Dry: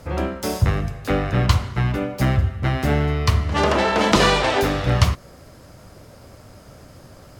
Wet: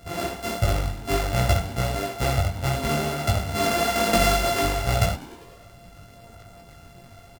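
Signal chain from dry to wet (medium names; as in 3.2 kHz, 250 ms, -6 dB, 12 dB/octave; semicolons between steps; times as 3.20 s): sorted samples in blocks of 64 samples; chorus voices 6, 1.3 Hz, delay 20 ms, depth 3 ms; frequency-shifting echo 99 ms, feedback 64%, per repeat +83 Hz, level -20 dB; trim -1 dB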